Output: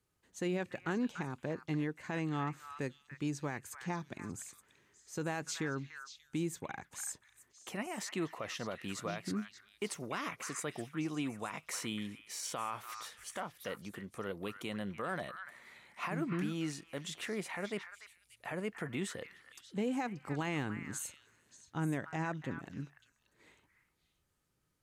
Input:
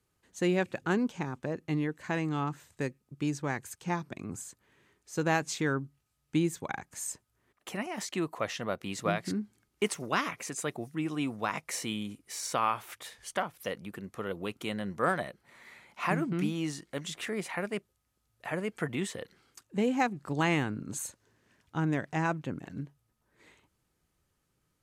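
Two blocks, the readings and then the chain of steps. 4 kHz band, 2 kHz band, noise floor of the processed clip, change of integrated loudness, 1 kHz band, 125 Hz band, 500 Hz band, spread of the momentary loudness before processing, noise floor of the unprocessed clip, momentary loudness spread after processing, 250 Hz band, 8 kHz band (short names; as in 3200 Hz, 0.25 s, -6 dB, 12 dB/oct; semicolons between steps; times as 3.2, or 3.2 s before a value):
-5.0 dB, -6.5 dB, -77 dBFS, -6.5 dB, -8.0 dB, -5.5 dB, -6.5 dB, 12 LU, -78 dBFS, 10 LU, -5.5 dB, -4.0 dB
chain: limiter -23 dBFS, peak gain reduction 8.5 dB; delay with a stepping band-pass 0.291 s, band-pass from 1600 Hz, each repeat 1.4 oct, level -5.5 dB; gain -4 dB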